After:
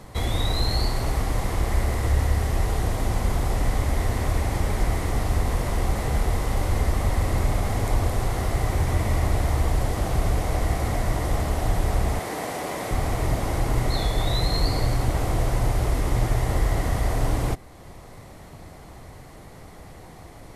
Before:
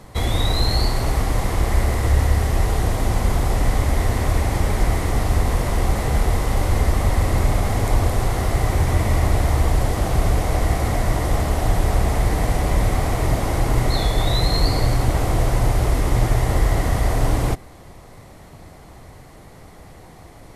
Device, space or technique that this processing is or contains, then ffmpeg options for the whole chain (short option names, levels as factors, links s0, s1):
parallel compression: -filter_complex "[0:a]asettb=1/sr,asplit=3[s0][s1][s2];[s0]atrim=end=12.194[s3];[s1]atrim=start=12.19:end=12.91,asetpts=PTS-STARTPTS,afade=t=in:d=0.004:c=qsin,afade=t=out:st=0.716:d=0.004:c=qsin,highpass=280[s4];[s2]atrim=start=12.906[s5];[s3][s4]acrossfade=d=0.004:c1=hsin:c2=qsin[s6];[s6][s5]acrossfade=d=0.004:c1=qsin:c2=hsin,asplit=2[s7][s8];[s8]acompressor=threshold=0.0158:ratio=6,volume=0.668[s9];[s7][s9]amix=inputs=2:normalize=0,volume=0.562"